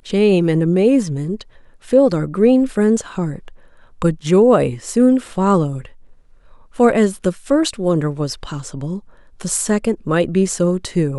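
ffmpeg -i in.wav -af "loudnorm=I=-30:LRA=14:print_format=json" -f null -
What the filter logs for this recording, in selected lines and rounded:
"input_i" : "-17.4",
"input_tp" : "-1.2",
"input_lra" : "3.7",
"input_thresh" : "-28.1",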